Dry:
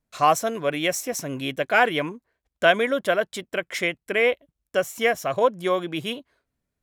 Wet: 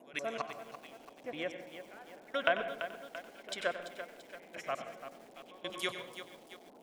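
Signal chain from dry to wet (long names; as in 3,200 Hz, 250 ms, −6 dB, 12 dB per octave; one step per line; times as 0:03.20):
slices reordered back to front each 190 ms, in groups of 4
first-order pre-emphasis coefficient 0.97
treble cut that deepens with the level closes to 1,000 Hz, closed at −33.5 dBFS
low-shelf EQ 150 Hz +6 dB
delay that swaps between a low-pass and a high-pass 121 ms, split 860 Hz, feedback 56%, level −8.5 dB
gate pattern ".xx....." 109 BPM −24 dB
noise in a band 200–790 Hz −67 dBFS
convolution reverb RT60 0.75 s, pre-delay 93 ms, DRR 9.5 dB
feedback echo at a low word length 338 ms, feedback 55%, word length 10 bits, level −10.5 dB
level +8.5 dB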